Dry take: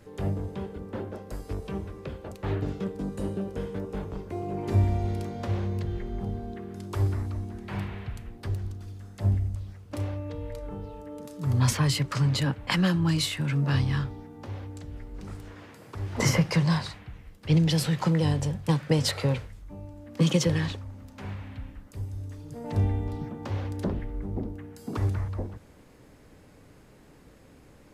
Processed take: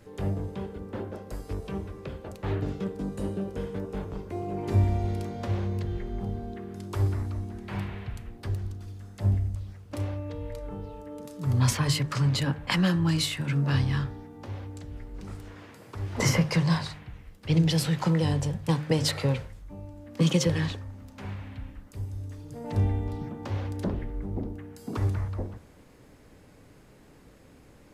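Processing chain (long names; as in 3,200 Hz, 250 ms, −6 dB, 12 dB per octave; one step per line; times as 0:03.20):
hum removal 75.97 Hz, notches 25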